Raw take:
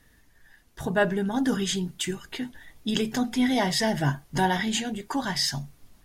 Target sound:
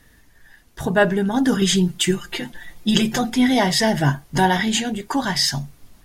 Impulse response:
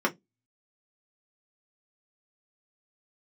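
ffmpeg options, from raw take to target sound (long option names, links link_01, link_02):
-filter_complex "[0:a]asettb=1/sr,asplit=3[link_01][link_02][link_03];[link_01]atrim=end=1.614[link_04];[link_02]atrim=start=1.61:end=3.3,asetpts=PTS-STARTPTS,afade=type=in:duration=0.004:curve=qsin,afade=type=out:start_time=1.686:duration=0.004:curve=qsin,aecho=1:1:5.7:0.88,atrim=end_sample=74529[link_05];[link_03]atrim=start=3.296[link_06];[link_04][link_05]acrossfade=duration=0.004:curve1=hsin:curve2=qsin[link_07];[link_07][link_06]acrossfade=duration=0.004:curve1=qsin:curve2=hsin,volume=6.5dB"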